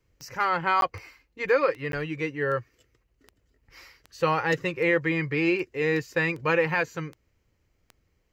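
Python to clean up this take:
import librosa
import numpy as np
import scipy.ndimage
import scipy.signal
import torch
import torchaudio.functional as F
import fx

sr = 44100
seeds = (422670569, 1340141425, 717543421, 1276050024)

y = fx.fix_declick_ar(x, sr, threshold=10.0)
y = fx.fix_interpolate(y, sr, at_s=(0.81, 1.92), length_ms=12.0)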